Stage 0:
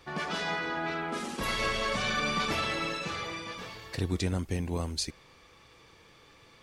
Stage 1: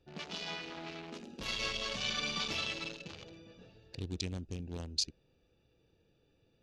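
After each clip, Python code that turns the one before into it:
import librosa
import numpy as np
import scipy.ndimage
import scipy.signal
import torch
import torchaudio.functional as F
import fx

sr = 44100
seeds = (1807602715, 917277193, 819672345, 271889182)

y = fx.wiener(x, sr, points=41)
y = fx.band_shelf(y, sr, hz=4200.0, db=12.0, octaves=1.7)
y = F.gain(torch.from_numpy(y), -9.0).numpy()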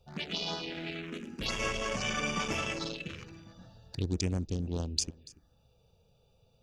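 y = fx.env_phaser(x, sr, low_hz=300.0, high_hz=4100.0, full_db=-34.0)
y = y + 10.0 ** (-21.0 / 20.0) * np.pad(y, (int(286 * sr / 1000.0), 0))[:len(y)]
y = F.gain(torch.from_numpy(y), 8.0).numpy()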